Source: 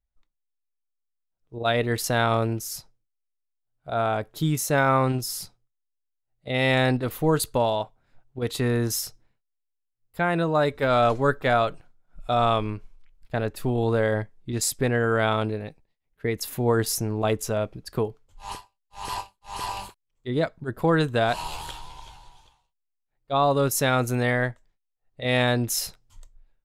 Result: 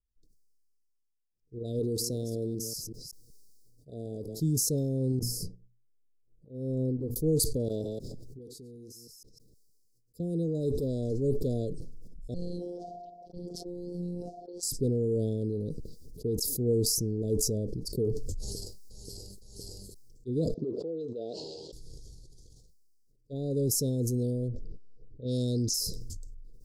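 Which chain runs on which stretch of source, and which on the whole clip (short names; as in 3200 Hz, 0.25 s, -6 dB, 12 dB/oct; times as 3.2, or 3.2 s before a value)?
1.79–4.4 reverse delay 0.189 s, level -13 dB + low shelf 160 Hz -8 dB
5.19–7.16 resonant high shelf 2100 Hz -13 dB, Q 3 + notches 60/120/180/240 Hz + upward expander 2.5:1, over -34 dBFS
7.68–10.2 reverse delay 0.155 s, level -10.5 dB + low shelf 110 Hz -10.5 dB + compressor 4:1, threshold -44 dBFS
12.34–14.63 low-pass opened by the level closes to 1300 Hz, open at -20 dBFS + ring modulator 730 Hz + robotiser 176 Hz
20.54–21.73 BPF 590–2800 Hz + air absorption 100 m
24.48–25.74 low-pass opened by the level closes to 860 Hz, open at -17.5 dBFS + bell 5000 Hz +13 dB 1.2 oct
whole clip: Chebyshev band-stop 470–4800 Hz, order 4; high shelf 9100 Hz -7.5 dB; sustainer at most 20 dB/s; gain -4 dB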